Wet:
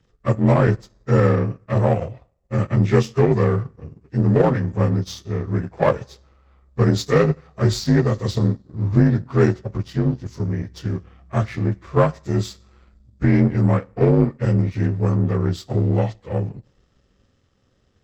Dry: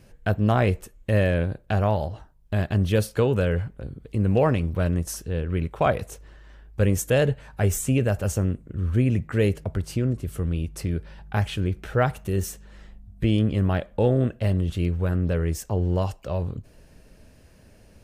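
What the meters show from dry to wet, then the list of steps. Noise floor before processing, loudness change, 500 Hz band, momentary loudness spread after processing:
-53 dBFS, +4.5 dB, +4.0 dB, 10 LU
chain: inharmonic rescaling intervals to 84%; two-slope reverb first 0.58 s, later 1.9 s, DRR 16 dB; power-law curve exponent 1.4; gain +8.5 dB

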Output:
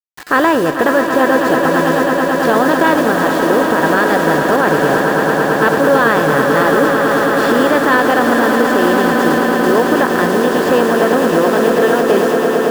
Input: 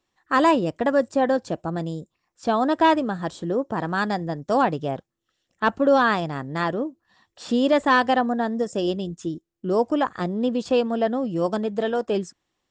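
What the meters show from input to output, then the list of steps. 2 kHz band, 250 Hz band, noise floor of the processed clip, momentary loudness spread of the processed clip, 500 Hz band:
+14.5 dB, +10.0 dB, -16 dBFS, 2 LU, +11.5 dB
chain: per-bin compression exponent 0.6; fifteen-band EQ 100 Hz +6 dB, 400 Hz +7 dB, 1600 Hz +8 dB, 6300 Hz -3 dB; in parallel at -1 dB: compressor 4:1, threshold -25 dBFS, peak gain reduction 14 dB; on the sum: bit-crush 5-bit; resonator 150 Hz, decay 0.79 s, harmonics odd, mix 60%; on a send: swelling echo 0.11 s, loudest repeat 8, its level -10 dB; on the sum: maximiser +7.5 dB; gain -1 dB

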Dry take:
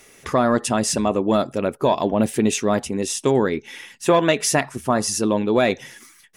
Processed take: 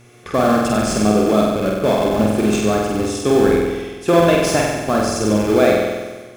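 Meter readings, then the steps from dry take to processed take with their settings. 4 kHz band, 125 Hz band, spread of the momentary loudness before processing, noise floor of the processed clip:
+1.5 dB, +5.0 dB, 6 LU, -39 dBFS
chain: HPF 43 Hz 24 dB/oct; high shelf 6900 Hz -9 dB; in parallel at -3.5 dB: Schmitt trigger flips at -19.5 dBFS; on the sum: notch comb 950 Hz; buzz 120 Hz, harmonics 37, -47 dBFS -8 dB/oct; on a send: flutter echo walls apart 8.1 m, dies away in 1.3 s; on the sum: gain -1 dB

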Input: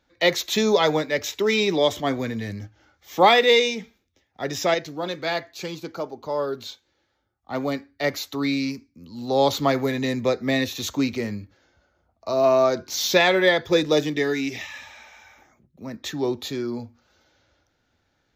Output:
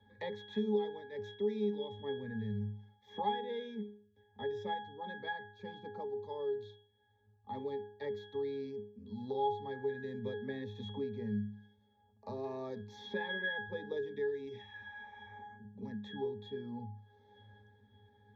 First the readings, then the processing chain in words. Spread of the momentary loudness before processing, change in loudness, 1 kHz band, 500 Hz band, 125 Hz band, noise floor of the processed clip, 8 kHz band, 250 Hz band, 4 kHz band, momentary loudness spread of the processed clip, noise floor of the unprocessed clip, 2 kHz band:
17 LU, -17.5 dB, -15.5 dB, -16.0 dB, -11.5 dB, -70 dBFS, under -35 dB, -15.5 dB, -23.0 dB, 13 LU, -71 dBFS, -17.5 dB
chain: octave resonator G#, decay 0.45 s; three-band squash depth 70%; gain +3 dB

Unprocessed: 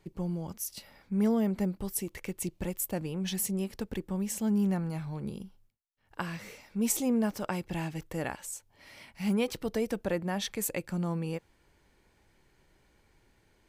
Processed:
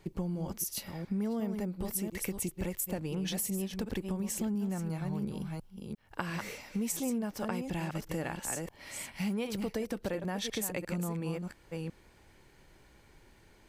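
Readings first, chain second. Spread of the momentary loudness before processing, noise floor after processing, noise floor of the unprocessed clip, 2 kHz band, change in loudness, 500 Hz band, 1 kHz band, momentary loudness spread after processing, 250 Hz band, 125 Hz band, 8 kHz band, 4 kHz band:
12 LU, -61 dBFS, -68 dBFS, -0.5 dB, -3.0 dB, -3.0 dB, -2.0 dB, 8 LU, -3.5 dB, -1.5 dB, -1.0 dB, -0.5 dB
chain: reverse delay 0.35 s, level -8.5 dB; compressor, threshold -37 dBFS, peak gain reduction 14 dB; gain +5.5 dB

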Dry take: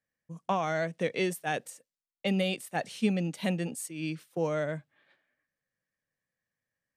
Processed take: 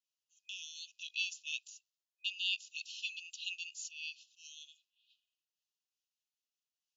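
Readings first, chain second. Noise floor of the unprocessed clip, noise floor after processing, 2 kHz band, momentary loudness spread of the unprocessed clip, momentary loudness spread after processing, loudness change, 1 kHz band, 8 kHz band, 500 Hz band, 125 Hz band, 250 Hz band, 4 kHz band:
under -85 dBFS, under -85 dBFS, -4.5 dB, 7 LU, 18 LU, -8.0 dB, under -40 dB, -4.0 dB, under -40 dB, under -40 dB, under -40 dB, +2.5 dB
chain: FFT band-pass 2500–7300 Hz; noise-modulated level, depth 60%; gain +5.5 dB

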